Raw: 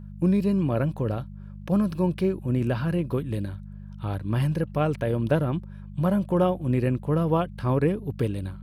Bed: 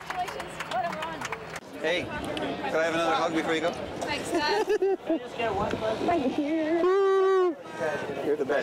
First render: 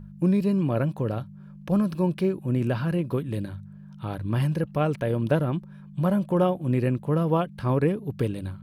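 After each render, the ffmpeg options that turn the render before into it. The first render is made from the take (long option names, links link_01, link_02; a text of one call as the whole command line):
ffmpeg -i in.wav -af "bandreject=frequency=50:width_type=h:width=4,bandreject=frequency=100:width_type=h:width=4" out.wav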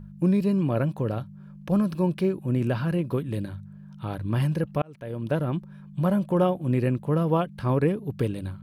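ffmpeg -i in.wav -filter_complex "[0:a]asplit=2[link_01][link_02];[link_01]atrim=end=4.82,asetpts=PTS-STARTPTS,afade=type=out:start_time=4.816:duration=0.004:curve=hsin[link_03];[link_02]atrim=start=4.82,asetpts=PTS-STARTPTS,afade=type=in:duration=0.75[link_04];[link_03][link_04]concat=n=2:v=0:a=1" out.wav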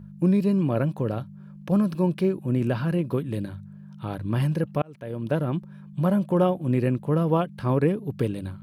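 ffmpeg -i in.wav -af "highpass=frequency=150:poles=1,lowshelf=frequency=320:gain=4.5" out.wav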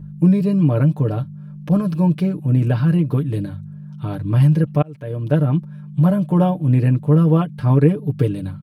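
ffmpeg -i in.wav -af "lowshelf=frequency=210:gain=9.5,aecho=1:1:6.7:0.77" out.wav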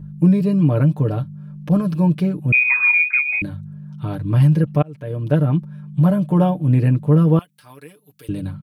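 ffmpeg -i in.wav -filter_complex "[0:a]asettb=1/sr,asplit=3[link_01][link_02][link_03];[link_01]atrim=end=2.524[link_04];[link_02]atrim=start=2.52:end=3.42,asetpts=PTS-STARTPTS,afade=type=in:duration=0.004:curve=qsin,afade=type=out:start_time=0.896:duration=0.004:curve=qsin,lowpass=frequency=2200:width_type=q:width=0.5098,lowpass=frequency=2200:width_type=q:width=0.6013,lowpass=frequency=2200:width_type=q:width=0.9,lowpass=frequency=2200:width_type=q:width=2.563,afreqshift=-2600[link_05];[link_03]atrim=start=3.416[link_06];[link_04][link_05]acrossfade=duration=0.004:curve1=hsin:curve2=qsin[link_07];[link_07][link_06]acrossfade=duration=0.004:curve1=qsin:curve2=hsin,asettb=1/sr,asplit=3[link_08][link_09][link_10];[link_08]atrim=end=7.394[link_11];[link_09]atrim=start=7.39:end=8.29,asetpts=PTS-STARTPTS,afade=type=in:duration=0.004:curve=qsin,afade=type=out:start_time=0.896:duration=0.004:curve=qsin,aderivative[link_12];[link_10]atrim=start=8.286[link_13];[link_11][link_12]acrossfade=duration=0.004:curve1=hsin:curve2=qsin[link_14];[link_14][link_13]acrossfade=duration=0.004:curve1=qsin:curve2=hsin" out.wav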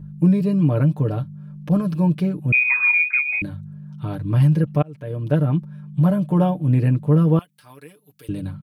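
ffmpeg -i in.wav -af "volume=-2dB" out.wav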